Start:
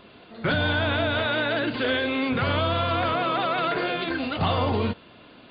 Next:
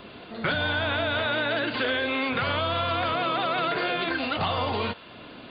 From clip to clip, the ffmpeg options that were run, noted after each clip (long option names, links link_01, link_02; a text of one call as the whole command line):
ffmpeg -i in.wav -filter_complex "[0:a]acrossover=split=560|2500[link_01][link_02][link_03];[link_01]acompressor=threshold=-39dB:ratio=4[link_04];[link_02]acompressor=threshold=-33dB:ratio=4[link_05];[link_03]acompressor=threshold=-40dB:ratio=4[link_06];[link_04][link_05][link_06]amix=inputs=3:normalize=0,volume=5.5dB" out.wav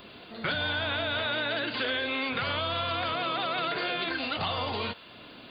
ffmpeg -i in.wav -af "crystalizer=i=2.5:c=0,volume=-5.5dB" out.wav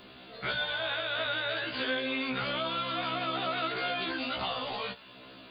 ffmpeg -i in.wav -af "afftfilt=real='re*1.73*eq(mod(b,3),0)':imag='im*1.73*eq(mod(b,3),0)':win_size=2048:overlap=0.75" out.wav